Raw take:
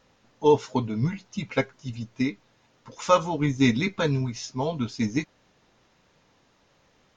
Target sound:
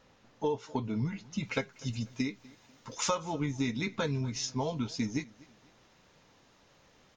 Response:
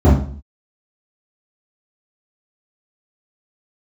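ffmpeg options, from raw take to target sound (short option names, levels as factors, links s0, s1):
-af "acompressor=threshold=0.0355:ratio=6,asetnsamples=n=441:p=0,asendcmd='1.43 highshelf g 9;3.15 highshelf g 3',highshelf=f=4500:g=-2.5,aecho=1:1:246|492:0.0708|0.0248"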